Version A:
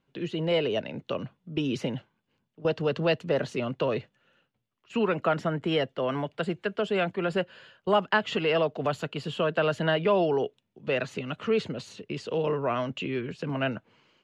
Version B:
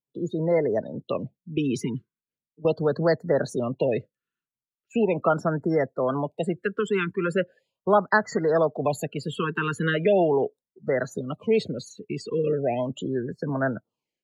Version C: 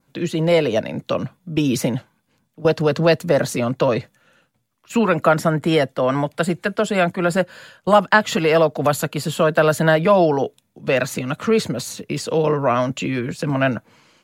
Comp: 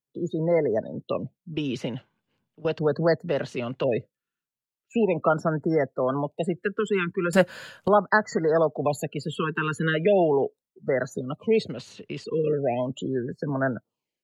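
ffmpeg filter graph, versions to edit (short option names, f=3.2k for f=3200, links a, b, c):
-filter_complex "[0:a]asplit=3[a][b][c];[1:a]asplit=5[d][e][f][g][h];[d]atrim=end=1.542[i];[a]atrim=start=1.538:end=2.792[j];[e]atrim=start=2.788:end=3.292[k];[b]atrim=start=3.288:end=3.842[l];[f]atrim=start=3.838:end=7.332[m];[2:a]atrim=start=7.328:end=7.882[n];[g]atrim=start=7.878:end=11.692[o];[c]atrim=start=11.688:end=12.242[p];[h]atrim=start=12.238[q];[i][j]acrossfade=d=0.004:c1=hsin:c2=hsin[r];[r][k]acrossfade=d=0.004:c1=hsin:c2=hsin[s];[s][l]acrossfade=d=0.004:c1=hsin:c2=hsin[t];[t][m]acrossfade=d=0.004:c1=hsin:c2=hsin[u];[u][n]acrossfade=d=0.004:c1=hsin:c2=hsin[v];[v][o]acrossfade=d=0.004:c1=hsin:c2=hsin[w];[w][p]acrossfade=d=0.004:c1=hsin:c2=hsin[x];[x][q]acrossfade=d=0.004:c1=hsin:c2=hsin"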